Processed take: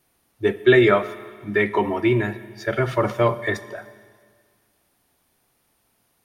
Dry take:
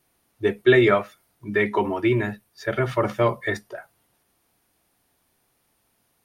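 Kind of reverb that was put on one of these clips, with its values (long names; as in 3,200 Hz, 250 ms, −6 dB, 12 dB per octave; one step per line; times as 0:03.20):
four-comb reverb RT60 1.8 s, combs from 29 ms, DRR 14.5 dB
level +1.5 dB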